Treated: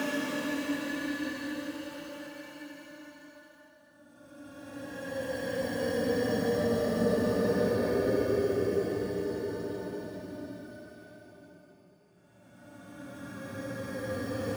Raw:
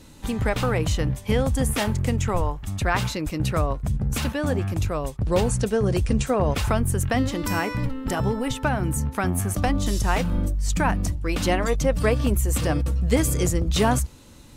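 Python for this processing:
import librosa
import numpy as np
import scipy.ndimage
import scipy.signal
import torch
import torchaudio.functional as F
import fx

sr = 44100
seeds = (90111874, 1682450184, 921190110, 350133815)

p1 = x + fx.echo_single(x, sr, ms=149, db=-6.0, dry=0)
p2 = fx.granulator(p1, sr, seeds[0], grain_ms=136.0, per_s=4.9, spray_ms=100.0, spread_st=0)
p3 = fx.notch(p2, sr, hz=830.0, q=12.0)
p4 = fx.sample_hold(p3, sr, seeds[1], rate_hz=5000.0, jitter_pct=0)
p5 = p3 + (p4 * 10.0 ** (-4.0 / 20.0))
p6 = fx.rev_gated(p5, sr, seeds[2], gate_ms=100, shape='falling', drr_db=-2.5)
p7 = fx.paulstretch(p6, sr, seeds[3], factor=40.0, window_s=0.05, from_s=4.39)
p8 = scipy.signal.sosfilt(scipy.signal.butter(2, 250.0, 'highpass', fs=sr, output='sos'), p7)
p9 = fx.doubler(p8, sr, ms=17.0, db=-11)
y = p9 * 10.0 ** (-8.5 / 20.0)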